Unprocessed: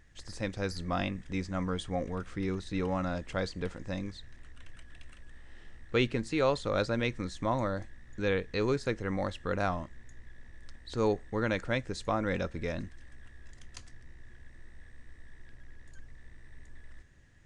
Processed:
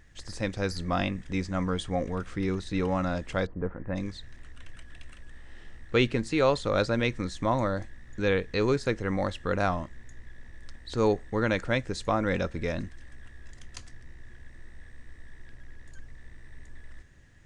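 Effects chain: 3.45–3.95 LPF 1100 Hz -> 2100 Hz 24 dB/oct; gain +4 dB

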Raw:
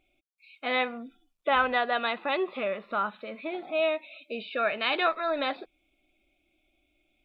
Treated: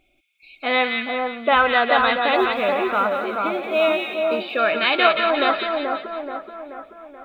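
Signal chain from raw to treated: 2.35–4.43 companded quantiser 8-bit; split-band echo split 1500 Hz, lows 0.431 s, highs 0.177 s, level -3 dB; gain +7.5 dB

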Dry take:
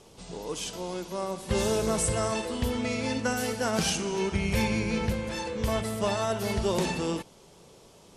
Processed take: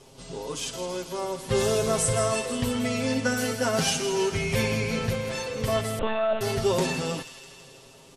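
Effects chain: comb 7.5 ms, depth 87%; thin delay 0.163 s, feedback 69%, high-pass 2000 Hz, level -10 dB; 5.99–6.41 monotone LPC vocoder at 8 kHz 220 Hz

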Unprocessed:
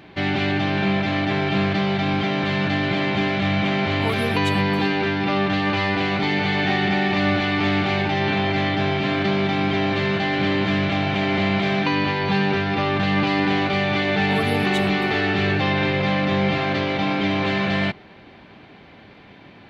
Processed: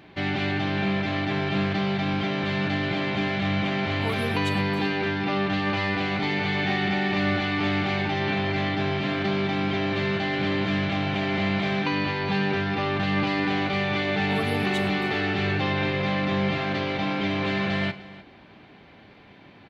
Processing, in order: tapped delay 40/104/303 ms -18.5/-19.5/-18.5 dB; gain -4.5 dB

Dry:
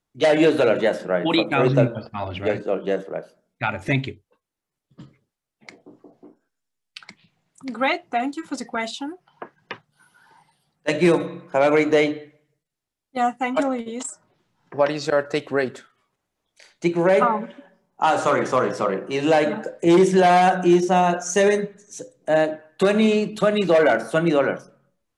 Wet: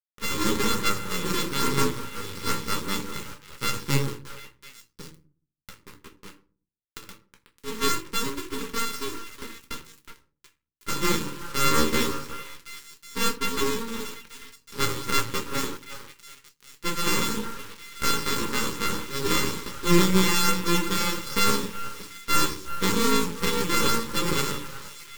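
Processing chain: sample sorter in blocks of 64 samples; bell 1700 Hz -14.5 dB 0.36 oct; AGC gain up to 9 dB; flange 0.14 Hz, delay 8.7 ms, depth 6 ms, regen +26%; delay with a stepping band-pass 0.368 s, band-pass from 790 Hz, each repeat 1.4 oct, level -8.5 dB; requantised 6-bit, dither none; shoebox room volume 180 m³, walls furnished, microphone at 1.3 m; half-wave rectifier; Butterworth band-stop 690 Hz, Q 1.6; gain -3 dB

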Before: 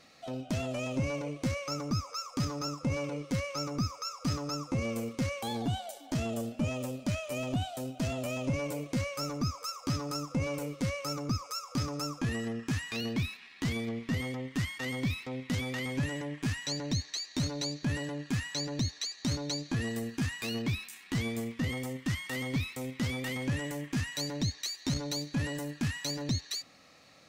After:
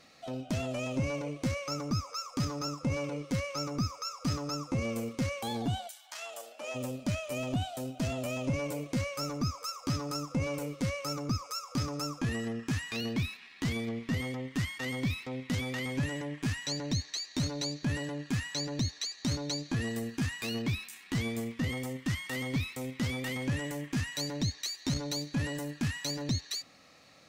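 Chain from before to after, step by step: 5.87–6.74 HPF 1300 Hz -> 430 Hz 24 dB/oct

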